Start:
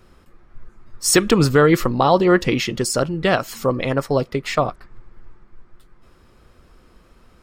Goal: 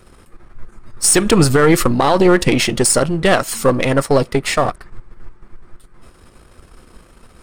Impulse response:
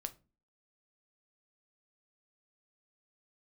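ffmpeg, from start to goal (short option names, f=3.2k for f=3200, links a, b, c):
-af "aeval=exprs='if(lt(val(0),0),0.447*val(0),val(0))':c=same,equalizer=f=9k:w=2.7:g=11,alimiter=level_in=10dB:limit=-1dB:release=50:level=0:latency=1,volume=-1dB"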